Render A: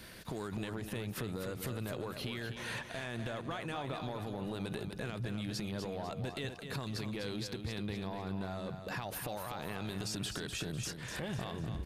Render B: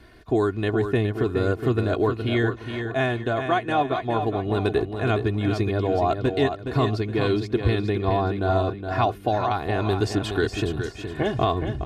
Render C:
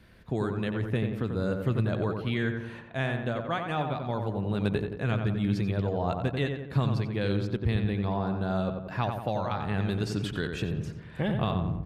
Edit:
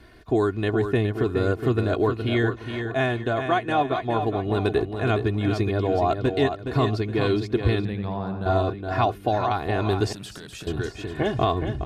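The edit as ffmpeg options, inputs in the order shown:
-filter_complex "[1:a]asplit=3[a][b][c];[a]atrim=end=7.852[d];[2:a]atrim=start=7.848:end=8.462[e];[b]atrim=start=8.458:end=10.132[f];[0:a]atrim=start=10.128:end=10.672[g];[c]atrim=start=10.668[h];[d][e]acrossfade=d=0.004:c1=hsin:c2=hsin[i];[i][f]acrossfade=d=0.004:c1=hsin:c2=hsin[j];[j][g]acrossfade=d=0.004:c1=hsin:c2=hsin[k];[k][h]acrossfade=d=0.004:c1=hsin:c2=hsin"

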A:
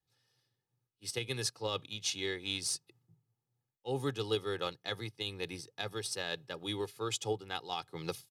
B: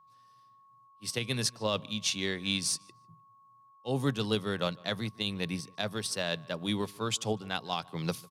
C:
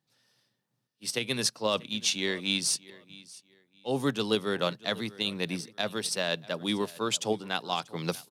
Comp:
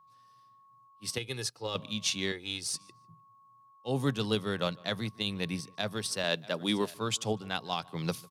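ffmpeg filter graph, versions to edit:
-filter_complex "[0:a]asplit=2[a][b];[1:a]asplit=4[c][d][e][f];[c]atrim=end=1.182[g];[a]atrim=start=1.178:end=1.752[h];[d]atrim=start=1.748:end=2.322[i];[b]atrim=start=2.318:end=2.742[j];[e]atrim=start=2.738:end=6.242[k];[2:a]atrim=start=6.238:end=6.942[l];[f]atrim=start=6.938[m];[g][h]acrossfade=d=0.004:c1=hsin:c2=hsin[n];[n][i]acrossfade=d=0.004:c1=hsin:c2=hsin[o];[o][j]acrossfade=d=0.004:c1=hsin:c2=hsin[p];[p][k]acrossfade=d=0.004:c1=hsin:c2=hsin[q];[q][l]acrossfade=d=0.004:c1=hsin:c2=hsin[r];[r][m]acrossfade=d=0.004:c1=hsin:c2=hsin"

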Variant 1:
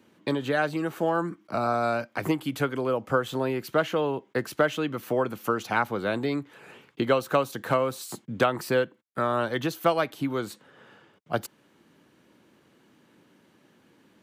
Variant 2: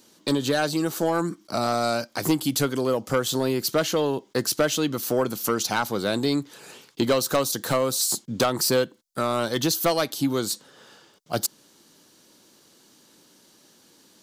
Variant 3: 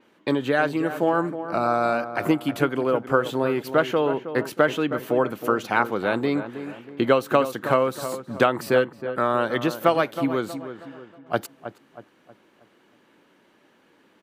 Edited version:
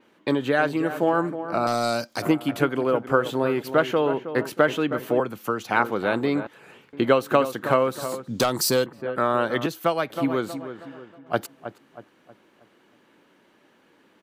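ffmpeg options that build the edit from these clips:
-filter_complex "[1:a]asplit=2[a][b];[0:a]asplit=3[c][d][e];[2:a]asplit=6[f][g][h][i][j][k];[f]atrim=end=1.672[l];[a]atrim=start=1.668:end=2.222[m];[g]atrim=start=2.218:end=5.202[n];[c]atrim=start=5.198:end=5.692[o];[h]atrim=start=5.688:end=6.472[p];[d]atrim=start=6.468:end=6.932[q];[i]atrim=start=6.928:end=8.282[r];[b]atrim=start=8.278:end=8.862[s];[j]atrim=start=8.858:end=9.662[t];[e]atrim=start=9.658:end=10.102[u];[k]atrim=start=10.098[v];[l][m]acrossfade=d=0.004:c1=hsin:c2=hsin[w];[w][n]acrossfade=d=0.004:c1=hsin:c2=hsin[x];[x][o]acrossfade=d=0.004:c1=hsin:c2=hsin[y];[y][p]acrossfade=d=0.004:c1=hsin:c2=hsin[z];[z][q]acrossfade=d=0.004:c1=hsin:c2=hsin[aa];[aa][r]acrossfade=d=0.004:c1=hsin:c2=hsin[ab];[ab][s]acrossfade=d=0.004:c1=hsin:c2=hsin[ac];[ac][t]acrossfade=d=0.004:c1=hsin:c2=hsin[ad];[ad][u]acrossfade=d=0.004:c1=hsin:c2=hsin[ae];[ae][v]acrossfade=d=0.004:c1=hsin:c2=hsin"

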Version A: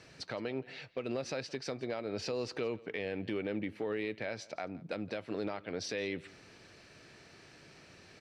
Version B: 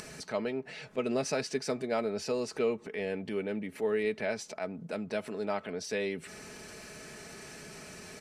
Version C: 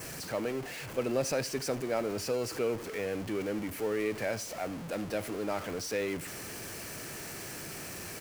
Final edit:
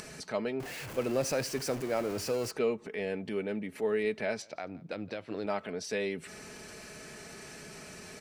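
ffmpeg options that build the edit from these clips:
-filter_complex "[1:a]asplit=3[a][b][c];[a]atrim=end=0.602[d];[2:a]atrim=start=0.598:end=2.512[e];[b]atrim=start=2.508:end=4.422[f];[0:a]atrim=start=4.418:end=5.462[g];[c]atrim=start=5.458[h];[d][e]acrossfade=d=0.004:c1=hsin:c2=hsin[i];[i][f]acrossfade=d=0.004:c1=hsin:c2=hsin[j];[j][g]acrossfade=d=0.004:c1=hsin:c2=hsin[k];[k][h]acrossfade=d=0.004:c1=hsin:c2=hsin"

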